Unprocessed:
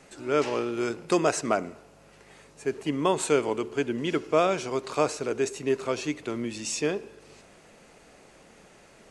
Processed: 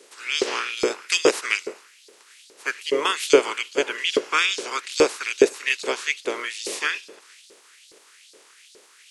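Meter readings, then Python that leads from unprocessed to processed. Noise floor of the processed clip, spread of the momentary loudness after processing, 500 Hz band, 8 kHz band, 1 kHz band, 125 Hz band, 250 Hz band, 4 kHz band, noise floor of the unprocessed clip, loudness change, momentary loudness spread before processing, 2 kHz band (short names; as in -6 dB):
-54 dBFS, 10 LU, +3.5 dB, +5.0 dB, +1.5 dB, under -10 dB, -2.0 dB, +12.5 dB, -55 dBFS, +4.5 dB, 8 LU, +11.5 dB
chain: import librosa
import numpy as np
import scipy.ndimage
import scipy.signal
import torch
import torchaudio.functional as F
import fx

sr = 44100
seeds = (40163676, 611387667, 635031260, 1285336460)

y = fx.spec_clip(x, sr, under_db=25)
y = scipy.signal.sosfilt(scipy.signal.butter(2, 130.0, 'highpass', fs=sr, output='sos'), y)
y = fx.low_shelf_res(y, sr, hz=530.0, db=9.5, q=3.0)
y = fx.filter_lfo_highpass(y, sr, shape='saw_up', hz=2.4, low_hz=430.0, high_hz=4700.0, q=2.7)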